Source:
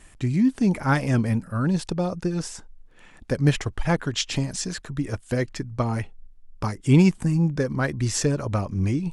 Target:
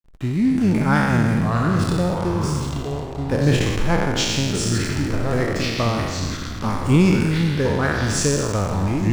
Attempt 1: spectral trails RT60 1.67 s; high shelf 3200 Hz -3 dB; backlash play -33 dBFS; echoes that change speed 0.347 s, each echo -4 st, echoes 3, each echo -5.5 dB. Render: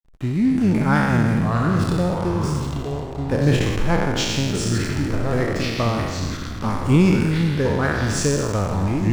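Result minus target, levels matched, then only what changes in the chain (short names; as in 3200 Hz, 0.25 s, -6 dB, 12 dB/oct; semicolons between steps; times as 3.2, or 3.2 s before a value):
8000 Hz band -2.5 dB
remove: high shelf 3200 Hz -3 dB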